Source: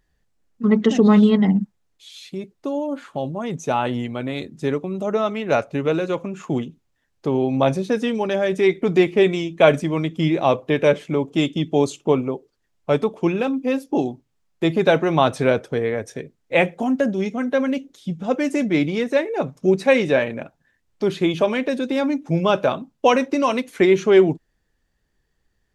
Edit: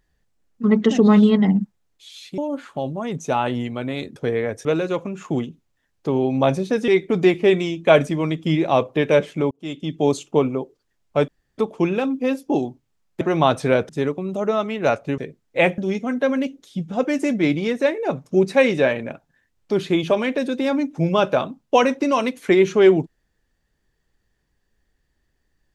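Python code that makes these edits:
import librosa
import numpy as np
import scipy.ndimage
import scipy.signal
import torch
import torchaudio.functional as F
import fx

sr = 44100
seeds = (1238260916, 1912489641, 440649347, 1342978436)

y = fx.edit(x, sr, fx.cut(start_s=2.38, length_s=0.39),
    fx.swap(start_s=4.55, length_s=1.29, other_s=15.65, other_length_s=0.49),
    fx.cut(start_s=8.07, length_s=0.54),
    fx.fade_in_span(start_s=11.24, length_s=0.59),
    fx.insert_room_tone(at_s=13.01, length_s=0.3),
    fx.cut(start_s=14.64, length_s=0.33),
    fx.cut(start_s=16.74, length_s=0.35), tone=tone)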